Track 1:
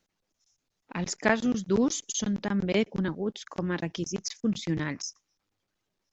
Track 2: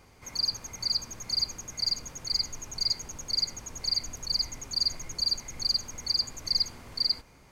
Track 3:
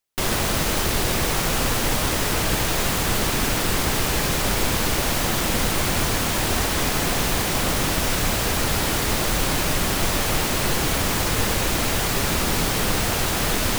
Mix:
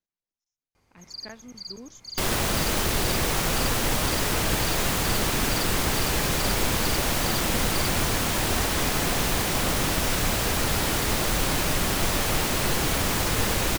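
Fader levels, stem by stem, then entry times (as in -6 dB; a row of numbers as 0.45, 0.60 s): -19.0, -10.5, -2.5 dB; 0.00, 0.75, 2.00 s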